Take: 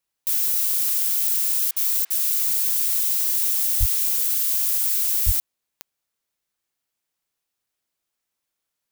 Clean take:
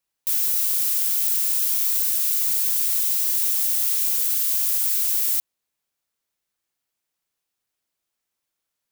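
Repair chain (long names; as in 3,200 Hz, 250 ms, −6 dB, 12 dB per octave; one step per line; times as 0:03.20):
click removal
0:03.79–0:03.91: high-pass filter 140 Hz 24 dB per octave
0:05.25–0:05.37: high-pass filter 140 Hz 24 dB per octave
repair the gap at 0:01.71/0:02.05, 54 ms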